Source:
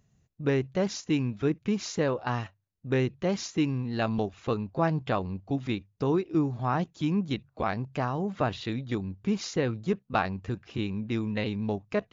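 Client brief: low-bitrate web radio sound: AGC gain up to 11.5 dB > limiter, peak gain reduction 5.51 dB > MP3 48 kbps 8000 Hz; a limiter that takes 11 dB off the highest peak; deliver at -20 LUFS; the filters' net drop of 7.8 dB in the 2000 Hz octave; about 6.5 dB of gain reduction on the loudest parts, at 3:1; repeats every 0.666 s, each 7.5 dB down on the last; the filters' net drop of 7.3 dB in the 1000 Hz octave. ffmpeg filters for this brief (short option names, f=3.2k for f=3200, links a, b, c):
-af "equalizer=f=1k:t=o:g=-8.5,equalizer=f=2k:t=o:g=-7.5,acompressor=threshold=-31dB:ratio=3,alimiter=level_in=6dB:limit=-24dB:level=0:latency=1,volume=-6dB,aecho=1:1:666|1332|1998|2664|3330:0.422|0.177|0.0744|0.0312|0.0131,dynaudnorm=m=11.5dB,alimiter=level_in=6.5dB:limit=-24dB:level=0:latency=1,volume=-6.5dB,volume=21dB" -ar 8000 -c:a libmp3lame -b:a 48k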